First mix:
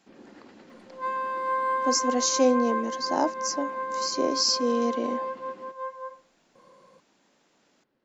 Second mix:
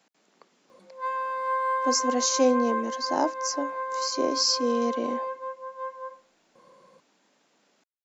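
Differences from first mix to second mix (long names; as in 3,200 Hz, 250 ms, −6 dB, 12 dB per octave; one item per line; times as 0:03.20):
first sound: muted
master: add low-shelf EQ 74 Hz −8.5 dB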